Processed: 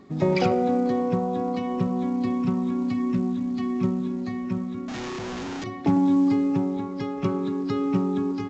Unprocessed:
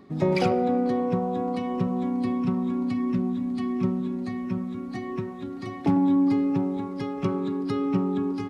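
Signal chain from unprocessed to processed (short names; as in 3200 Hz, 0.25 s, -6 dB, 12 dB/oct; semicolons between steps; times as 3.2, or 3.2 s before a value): 4.88–5.64 infinite clipping; gain +1 dB; A-law 128 kbps 16000 Hz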